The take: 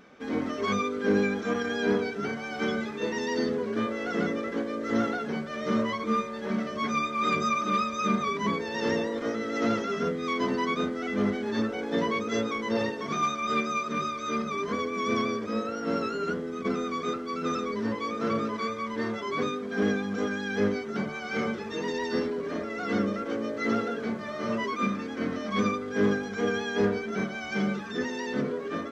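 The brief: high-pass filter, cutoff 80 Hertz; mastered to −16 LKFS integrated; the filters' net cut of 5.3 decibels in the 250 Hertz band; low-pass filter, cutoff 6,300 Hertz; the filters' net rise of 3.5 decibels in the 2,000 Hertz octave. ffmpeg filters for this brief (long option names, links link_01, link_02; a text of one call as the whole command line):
ffmpeg -i in.wav -af "highpass=80,lowpass=6300,equalizer=frequency=250:width_type=o:gain=-6.5,equalizer=frequency=2000:width_type=o:gain=4.5,volume=14dB" out.wav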